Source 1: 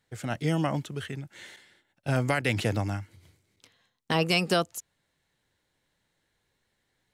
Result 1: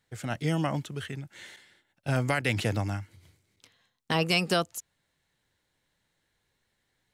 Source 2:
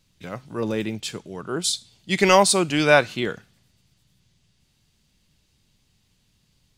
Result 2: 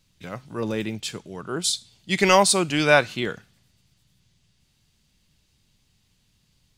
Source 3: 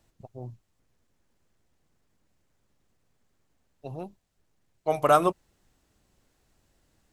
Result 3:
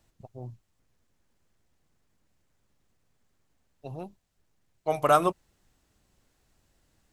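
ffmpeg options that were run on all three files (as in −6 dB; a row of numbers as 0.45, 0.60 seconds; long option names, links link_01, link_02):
-af "equalizer=frequency=400:width_type=o:width=2.2:gain=-2"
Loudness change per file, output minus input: −1.0, −1.0, 0.0 LU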